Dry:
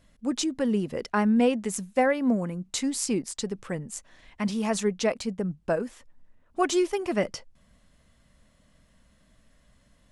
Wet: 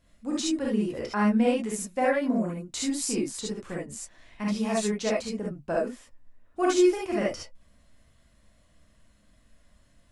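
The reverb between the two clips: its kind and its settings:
reverb whose tail is shaped and stops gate 90 ms rising, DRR −4 dB
level −6 dB

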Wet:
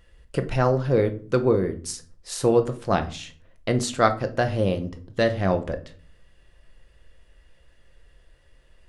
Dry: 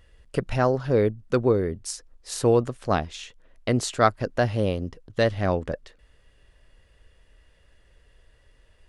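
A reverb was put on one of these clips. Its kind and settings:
rectangular room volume 350 cubic metres, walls furnished, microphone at 0.82 metres

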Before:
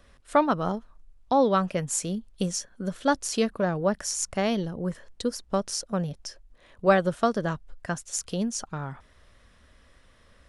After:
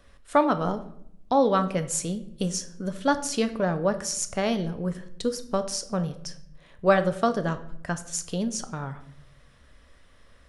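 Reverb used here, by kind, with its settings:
rectangular room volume 160 cubic metres, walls mixed, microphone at 0.32 metres

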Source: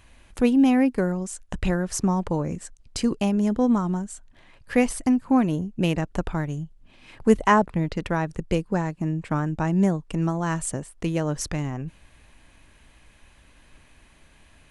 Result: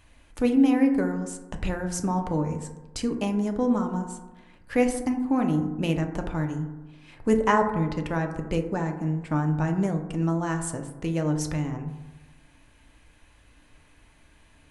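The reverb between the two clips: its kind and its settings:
feedback delay network reverb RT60 1.1 s, low-frequency decay 1.05×, high-frequency decay 0.3×, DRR 4 dB
level −4 dB

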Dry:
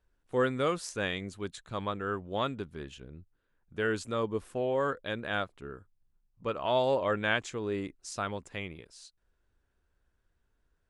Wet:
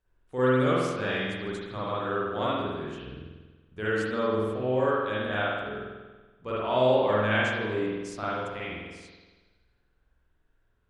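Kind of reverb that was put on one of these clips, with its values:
spring reverb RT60 1.3 s, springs 47 ms, chirp 35 ms, DRR −8.5 dB
level −4.5 dB

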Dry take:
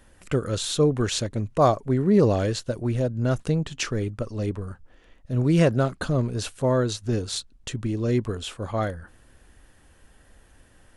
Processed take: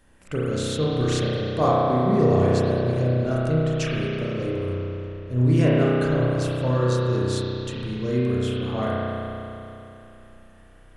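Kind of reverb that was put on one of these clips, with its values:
spring reverb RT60 3.1 s, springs 32 ms, chirp 80 ms, DRR −7 dB
level −5.5 dB

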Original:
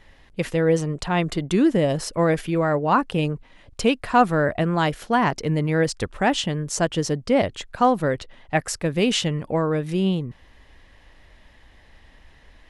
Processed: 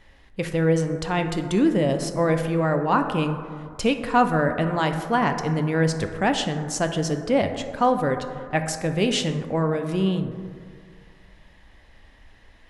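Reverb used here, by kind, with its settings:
dense smooth reverb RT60 2.1 s, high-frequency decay 0.3×, DRR 6.5 dB
level −2 dB

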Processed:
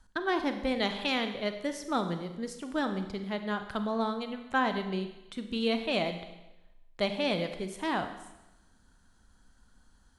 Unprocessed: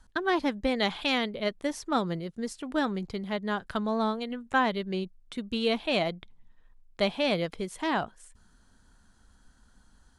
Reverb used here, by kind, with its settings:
four-comb reverb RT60 0.99 s, combs from 31 ms, DRR 7.5 dB
level −3 dB

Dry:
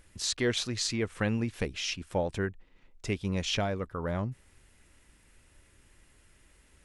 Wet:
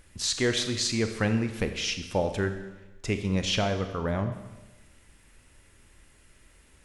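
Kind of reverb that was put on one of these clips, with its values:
four-comb reverb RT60 1.1 s, combs from 28 ms, DRR 7.5 dB
level +3 dB

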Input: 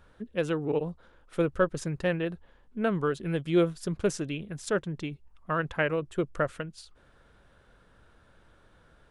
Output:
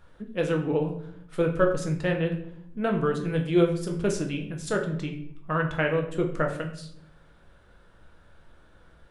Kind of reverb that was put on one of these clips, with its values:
rectangular room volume 120 cubic metres, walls mixed, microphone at 0.67 metres

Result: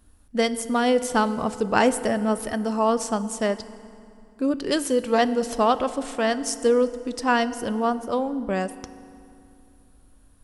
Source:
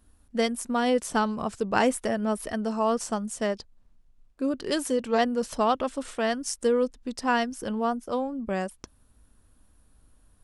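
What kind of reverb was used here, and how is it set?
feedback delay network reverb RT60 2.6 s, low-frequency decay 1.3×, high-frequency decay 0.7×, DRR 13.5 dB
level +3.5 dB

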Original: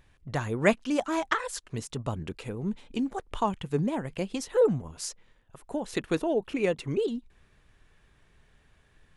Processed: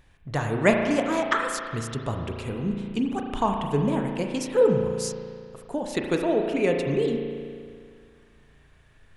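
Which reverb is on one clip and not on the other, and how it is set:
spring reverb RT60 2.1 s, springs 35 ms, chirp 65 ms, DRR 2.5 dB
level +2.5 dB

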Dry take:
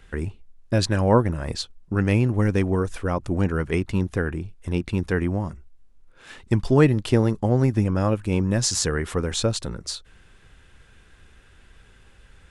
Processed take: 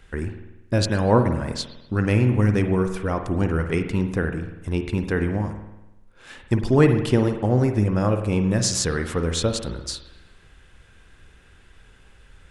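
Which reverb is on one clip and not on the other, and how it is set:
spring reverb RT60 1 s, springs 48 ms, chirp 80 ms, DRR 6.5 dB

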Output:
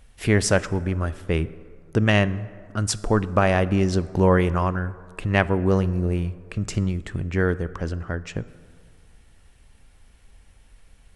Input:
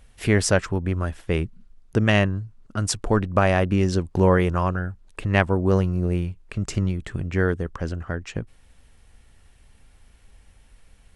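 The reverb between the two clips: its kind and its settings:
dense smooth reverb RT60 2.1 s, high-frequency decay 0.45×, DRR 16 dB

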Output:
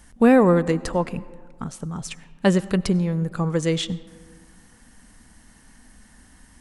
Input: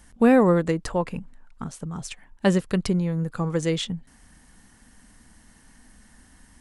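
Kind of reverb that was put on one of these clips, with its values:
comb and all-pass reverb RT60 1.9 s, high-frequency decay 0.4×, pre-delay 55 ms, DRR 18.5 dB
level +2 dB

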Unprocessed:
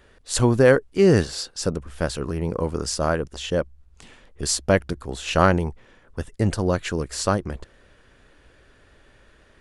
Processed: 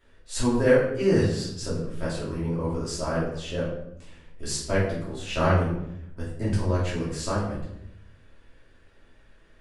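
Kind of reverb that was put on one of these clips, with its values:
rectangular room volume 190 cubic metres, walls mixed, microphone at 2.8 metres
level −14.5 dB

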